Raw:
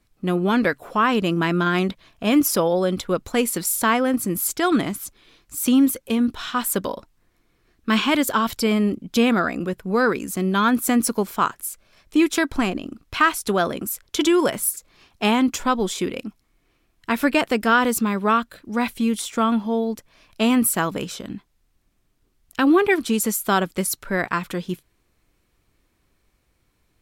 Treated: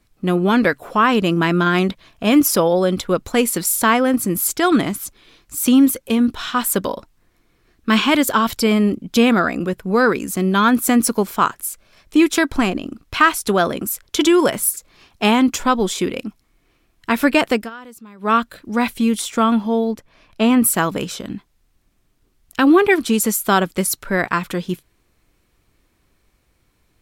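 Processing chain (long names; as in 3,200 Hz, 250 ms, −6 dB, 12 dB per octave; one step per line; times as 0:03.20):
0:17.53–0:18.35: duck −23 dB, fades 0.17 s
0:19.91–0:20.64: high-shelf EQ 4,100 Hz −10 dB
level +4 dB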